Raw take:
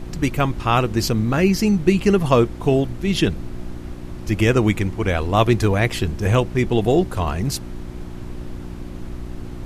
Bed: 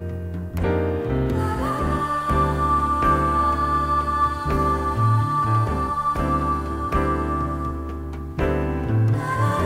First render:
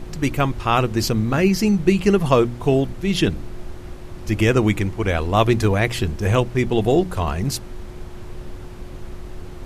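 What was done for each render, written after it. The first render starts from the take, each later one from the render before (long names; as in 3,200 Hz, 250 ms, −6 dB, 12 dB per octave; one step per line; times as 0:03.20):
hum removal 60 Hz, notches 5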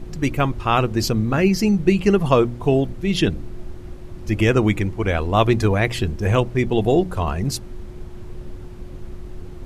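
broadband denoise 6 dB, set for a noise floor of −36 dBFS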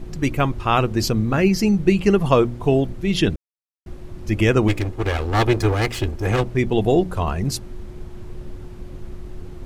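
0:03.36–0:03.86: silence
0:04.68–0:06.44: lower of the sound and its delayed copy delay 2.4 ms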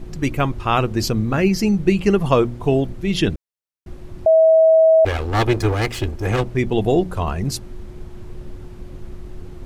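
0:04.26–0:05.05: beep over 644 Hz −8.5 dBFS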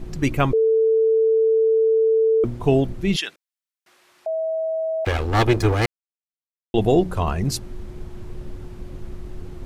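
0:00.53–0:02.44: beep over 445 Hz −14 dBFS
0:03.16–0:05.07: high-pass filter 1,300 Hz
0:05.86–0:06.74: silence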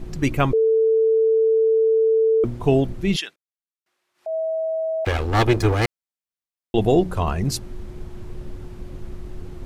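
0:03.16–0:04.35: duck −17.5 dB, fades 0.21 s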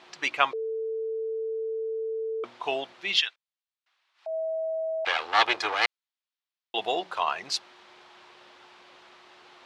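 Chebyshev band-pass filter 860–3,800 Hz, order 2
high-shelf EQ 2,600 Hz +8 dB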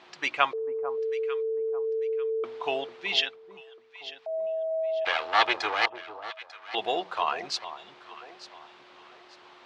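high-frequency loss of the air 59 metres
delay that swaps between a low-pass and a high-pass 447 ms, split 1,100 Hz, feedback 55%, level −10.5 dB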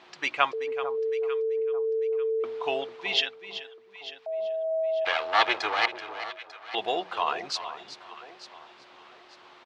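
single-tap delay 382 ms −13 dB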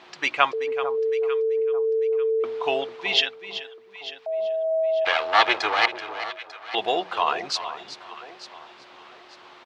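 level +4.5 dB
brickwall limiter −3 dBFS, peak gain reduction 1.5 dB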